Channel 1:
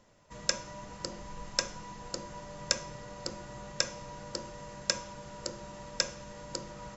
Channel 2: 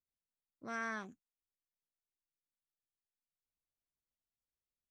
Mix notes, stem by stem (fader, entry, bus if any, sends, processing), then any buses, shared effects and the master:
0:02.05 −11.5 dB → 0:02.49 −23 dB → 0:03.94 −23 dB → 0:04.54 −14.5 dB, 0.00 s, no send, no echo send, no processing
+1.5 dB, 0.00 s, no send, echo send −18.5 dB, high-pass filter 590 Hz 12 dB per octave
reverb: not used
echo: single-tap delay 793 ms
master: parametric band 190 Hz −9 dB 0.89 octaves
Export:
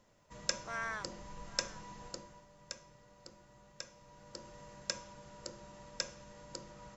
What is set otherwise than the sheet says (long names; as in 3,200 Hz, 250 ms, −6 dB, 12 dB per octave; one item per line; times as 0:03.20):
stem 1 −11.5 dB → −5.0 dB
master: missing parametric band 190 Hz −9 dB 0.89 octaves